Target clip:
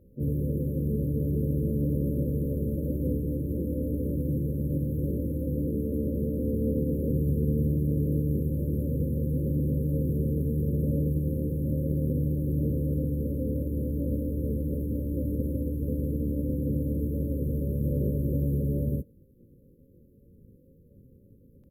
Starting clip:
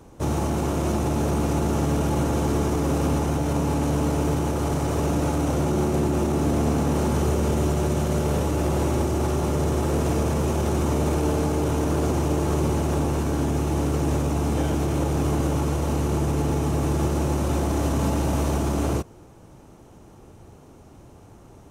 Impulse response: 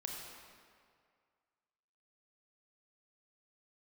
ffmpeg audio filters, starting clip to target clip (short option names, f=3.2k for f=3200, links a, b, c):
-filter_complex "[0:a]aeval=exprs='sgn(val(0))*max(abs(val(0))-0.00211,0)':c=same,afftfilt=real='re*(1-between(b*sr/4096,290,11000))':imag='im*(1-between(b*sr/4096,290,11000))':win_size=4096:overlap=0.75,asplit=4[a][b][c][d];[b]asetrate=33038,aresample=44100,atempo=1.33484,volume=-16dB[e];[c]asetrate=55563,aresample=44100,atempo=0.793701,volume=-18dB[f];[d]asetrate=88200,aresample=44100,atempo=0.5,volume=-1dB[g];[a][e][f][g]amix=inputs=4:normalize=0,volume=-5dB"